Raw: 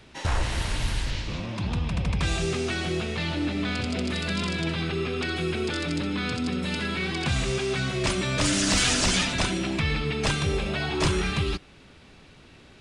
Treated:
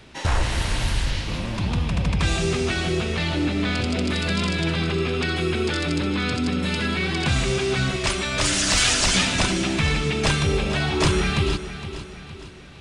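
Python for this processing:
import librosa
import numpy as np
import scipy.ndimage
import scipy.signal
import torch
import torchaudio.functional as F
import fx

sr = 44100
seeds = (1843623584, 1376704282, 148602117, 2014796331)

y = fx.peak_eq(x, sr, hz=240.0, db=-8.0, octaves=1.9, at=(7.96, 9.15))
y = fx.echo_feedback(y, sr, ms=463, feedback_pct=47, wet_db=-12.5)
y = F.gain(torch.from_numpy(y), 4.0).numpy()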